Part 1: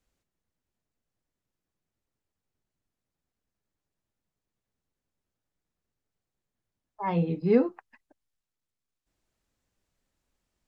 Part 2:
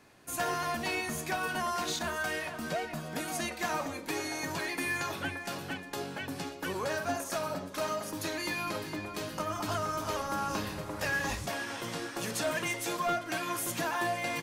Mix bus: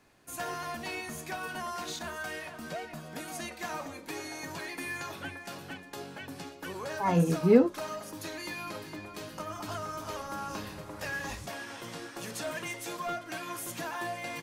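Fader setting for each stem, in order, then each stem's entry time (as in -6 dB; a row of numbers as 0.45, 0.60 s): +1.5, -4.5 dB; 0.00, 0.00 s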